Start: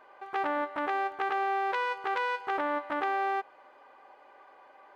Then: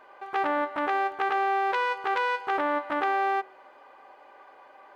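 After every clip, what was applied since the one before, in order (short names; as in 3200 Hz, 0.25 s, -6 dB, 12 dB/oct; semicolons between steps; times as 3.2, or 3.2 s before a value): de-hum 63.46 Hz, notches 36; gain +4 dB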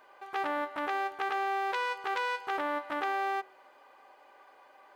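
high shelf 4100 Hz +12 dB; gain -6.5 dB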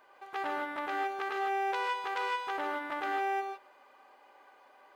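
non-linear reverb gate 0.18 s rising, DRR 3 dB; gain -3 dB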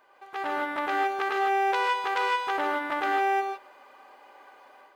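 AGC gain up to 7 dB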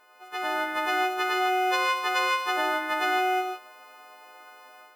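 frequency quantiser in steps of 3 st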